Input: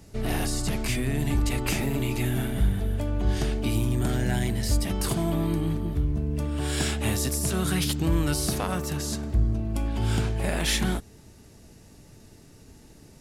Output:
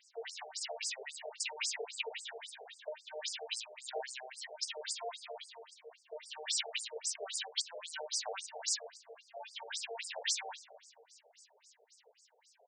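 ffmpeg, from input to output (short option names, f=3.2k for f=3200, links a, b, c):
-filter_complex "[0:a]equalizer=f=1.2k:t=o:w=0.35:g=-14.5,asetrate=45938,aresample=44100,acrossover=split=570|2000[a][b][c];[c]dynaudnorm=f=180:g=13:m=6.5dB[d];[a][b][d]amix=inputs=3:normalize=0,asplit=2[e][f];[f]adelay=287,lowpass=f=1k:p=1,volume=-14dB,asplit=2[g][h];[h]adelay=287,lowpass=f=1k:p=1,volume=0.54,asplit=2[i][j];[j]adelay=287,lowpass=f=1k:p=1,volume=0.54,asplit=2[k][l];[l]adelay=287,lowpass=f=1k:p=1,volume=0.54,asplit=2[m][n];[n]adelay=287,lowpass=f=1k:p=1,volume=0.54[o];[e][g][i][k][m][o]amix=inputs=6:normalize=0,alimiter=limit=-15.5dB:level=0:latency=1:release=46,flanger=delay=0:depth=2.2:regen=41:speed=0.5:shape=triangular,afftfilt=real='re*between(b*sr/1024,550*pow(6700/550,0.5+0.5*sin(2*PI*3.7*pts/sr))/1.41,550*pow(6700/550,0.5+0.5*sin(2*PI*3.7*pts/sr))*1.41)':imag='im*between(b*sr/1024,550*pow(6700/550,0.5+0.5*sin(2*PI*3.7*pts/sr))/1.41,550*pow(6700/550,0.5+0.5*sin(2*PI*3.7*pts/sr))*1.41)':win_size=1024:overlap=0.75,volume=2dB"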